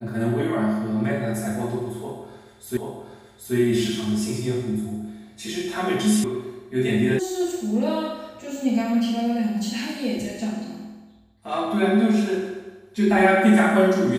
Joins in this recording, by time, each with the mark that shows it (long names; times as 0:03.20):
0:02.77: the same again, the last 0.78 s
0:06.24: cut off before it has died away
0:07.19: cut off before it has died away